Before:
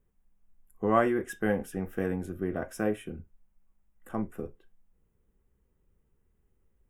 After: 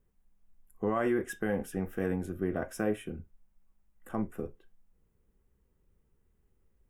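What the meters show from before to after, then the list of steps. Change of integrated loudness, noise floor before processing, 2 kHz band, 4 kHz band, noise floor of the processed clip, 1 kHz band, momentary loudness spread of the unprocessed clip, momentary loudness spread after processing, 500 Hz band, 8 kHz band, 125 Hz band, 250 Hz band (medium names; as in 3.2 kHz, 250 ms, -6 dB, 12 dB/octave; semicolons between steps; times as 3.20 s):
-3.0 dB, -73 dBFS, -3.0 dB, -1.5 dB, -73 dBFS, -6.0 dB, 16 LU, 11 LU, -2.5 dB, 0.0 dB, -1.0 dB, -1.5 dB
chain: peak limiter -19.5 dBFS, peak gain reduction 9 dB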